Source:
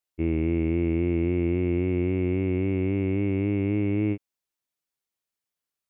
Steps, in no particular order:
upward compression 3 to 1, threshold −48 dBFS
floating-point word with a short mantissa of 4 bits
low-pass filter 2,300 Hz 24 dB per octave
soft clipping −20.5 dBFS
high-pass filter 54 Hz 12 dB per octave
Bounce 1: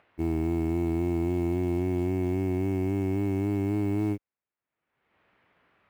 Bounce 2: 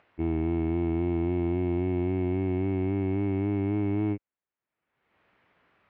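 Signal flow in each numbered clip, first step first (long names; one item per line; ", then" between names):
low-pass filter, then upward compression, then soft clipping, then high-pass filter, then floating-point word with a short mantissa
floating-point word with a short mantissa, then low-pass filter, then upward compression, then soft clipping, then high-pass filter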